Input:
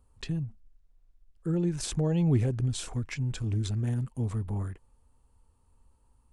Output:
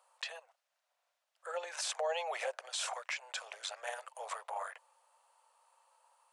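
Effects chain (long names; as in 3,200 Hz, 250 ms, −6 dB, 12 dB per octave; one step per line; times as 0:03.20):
Butterworth high-pass 550 Hz 72 dB per octave
high-shelf EQ 8,900 Hz −11 dB
brickwall limiter −36.5 dBFS, peak gain reduction 10.5 dB
level +9.5 dB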